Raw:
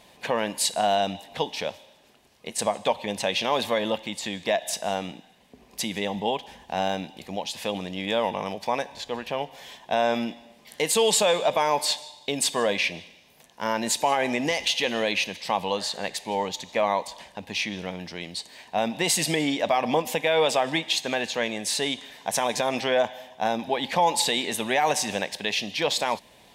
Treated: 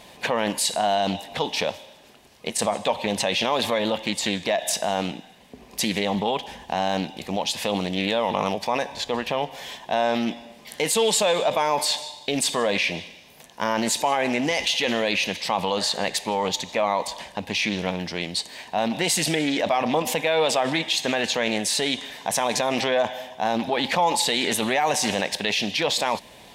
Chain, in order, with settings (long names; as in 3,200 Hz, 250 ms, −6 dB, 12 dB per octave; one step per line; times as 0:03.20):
in parallel at −3 dB: compressor whose output falls as the input rises −30 dBFS, ratio −0.5
on the sum: highs frequency-modulated by the lows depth 0.16 ms